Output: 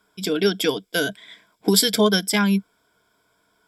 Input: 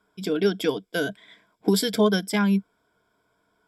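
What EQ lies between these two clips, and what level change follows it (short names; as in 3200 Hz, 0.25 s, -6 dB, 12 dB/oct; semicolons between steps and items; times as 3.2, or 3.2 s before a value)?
high shelf 2100 Hz +9 dB; +1.5 dB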